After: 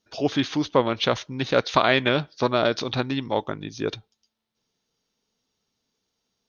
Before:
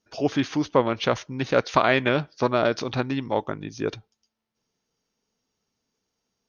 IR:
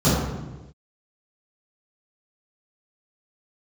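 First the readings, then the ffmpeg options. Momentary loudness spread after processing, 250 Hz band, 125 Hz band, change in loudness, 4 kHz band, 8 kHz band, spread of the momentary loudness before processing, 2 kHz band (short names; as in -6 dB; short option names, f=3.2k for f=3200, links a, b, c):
11 LU, 0.0 dB, 0.0 dB, +0.5 dB, +5.5 dB, n/a, 10 LU, +0.5 dB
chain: -af "equalizer=f=3.7k:t=o:w=0.54:g=7.5"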